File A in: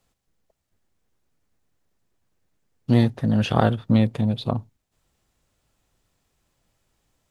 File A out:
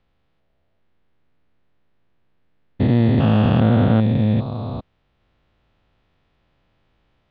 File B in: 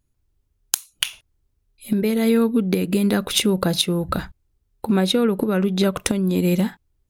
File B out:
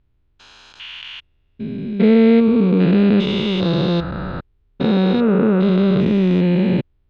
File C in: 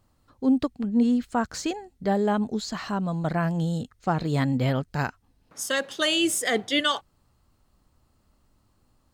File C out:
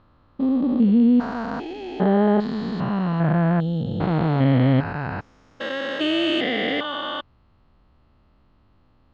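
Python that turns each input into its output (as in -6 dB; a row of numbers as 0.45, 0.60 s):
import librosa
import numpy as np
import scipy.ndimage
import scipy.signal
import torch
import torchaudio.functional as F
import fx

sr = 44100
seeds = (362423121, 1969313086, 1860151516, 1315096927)

y = fx.spec_steps(x, sr, hold_ms=400)
y = scipy.signal.sosfilt(scipy.signal.butter(4, 3600.0, 'lowpass', fs=sr, output='sos'), y)
y = y * librosa.db_to_amplitude(8.0)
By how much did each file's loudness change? +4.0, +5.0, +4.5 LU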